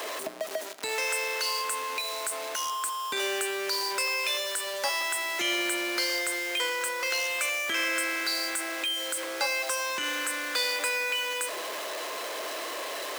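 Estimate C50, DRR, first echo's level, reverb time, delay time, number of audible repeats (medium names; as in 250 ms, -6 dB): 14.0 dB, 11.5 dB, no echo, 1.4 s, no echo, no echo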